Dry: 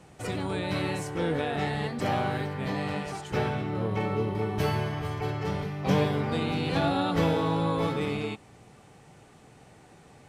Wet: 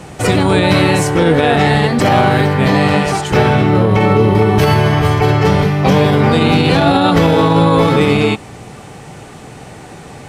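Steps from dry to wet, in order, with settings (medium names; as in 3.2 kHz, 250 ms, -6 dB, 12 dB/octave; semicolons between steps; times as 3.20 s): loudness maximiser +21 dB; trim -1 dB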